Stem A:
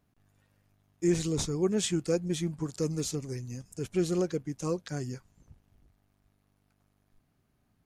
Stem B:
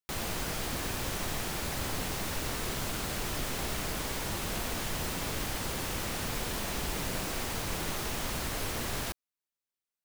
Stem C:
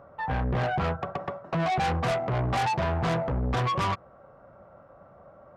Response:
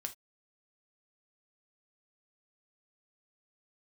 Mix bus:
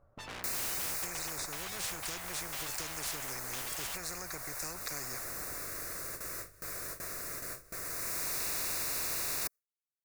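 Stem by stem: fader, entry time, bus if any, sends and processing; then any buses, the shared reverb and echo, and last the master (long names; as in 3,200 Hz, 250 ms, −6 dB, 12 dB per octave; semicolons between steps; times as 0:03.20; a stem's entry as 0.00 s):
+0.5 dB, 0.00 s, bus A, no send, spectral tilt −3.5 dB per octave
−9.0 dB, 0.35 s, bus A, no send, automatic ducking −12 dB, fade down 1.85 s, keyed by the first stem
−15.5 dB, 0.00 s, no bus, no send, soft clipping −36 dBFS, distortion −9 dB
bus A: 0.0 dB, phaser with its sweep stopped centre 850 Hz, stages 6; downward compressor, threshold −27 dBFS, peak gain reduction 8.5 dB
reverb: not used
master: noise gate with hold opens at −45 dBFS; high-shelf EQ 7,000 Hz +5.5 dB; every bin compressed towards the loudest bin 10 to 1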